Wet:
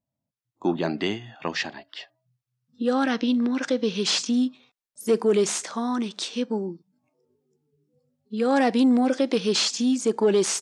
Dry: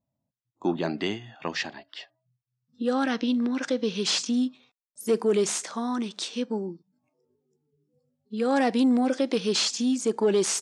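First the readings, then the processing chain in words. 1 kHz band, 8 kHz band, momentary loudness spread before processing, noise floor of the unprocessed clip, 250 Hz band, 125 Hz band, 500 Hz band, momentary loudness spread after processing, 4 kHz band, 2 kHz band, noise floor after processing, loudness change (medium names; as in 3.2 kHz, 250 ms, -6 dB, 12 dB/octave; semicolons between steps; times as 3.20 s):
+2.5 dB, +1.0 dB, 11 LU, -85 dBFS, +2.5 dB, +2.5 dB, +2.5 dB, 10 LU, +2.0 dB, +2.5 dB, under -85 dBFS, +2.5 dB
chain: treble shelf 9.5 kHz -4 dB; level rider gain up to 6 dB; trim -3.5 dB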